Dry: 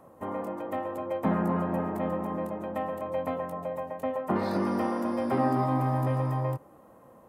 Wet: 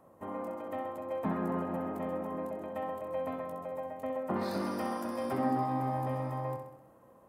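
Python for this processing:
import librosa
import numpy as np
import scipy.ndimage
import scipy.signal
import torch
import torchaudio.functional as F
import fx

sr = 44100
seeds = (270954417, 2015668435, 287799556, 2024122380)

y = fx.high_shelf(x, sr, hz=3500.0, db=9.5, at=(4.41, 5.33))
y = fx.echo_feedback(y, sr, ms=65, feedback_pct=57, wet_db=-7.0)
y = y * librosa.db_to_amplitude(-6.5)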